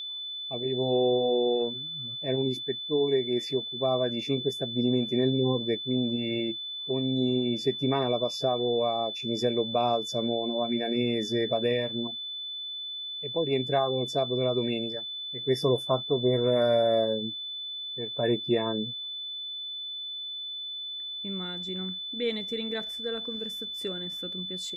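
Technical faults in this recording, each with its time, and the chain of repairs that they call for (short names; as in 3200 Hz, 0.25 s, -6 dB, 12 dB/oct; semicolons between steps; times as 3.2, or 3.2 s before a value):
tone 3500 Hz -34 dBFS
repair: notch 3500 Hz, Q 30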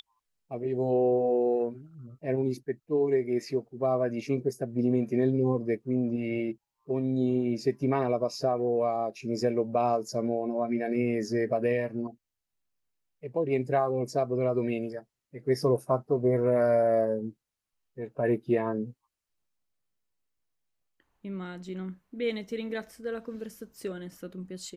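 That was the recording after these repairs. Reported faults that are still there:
none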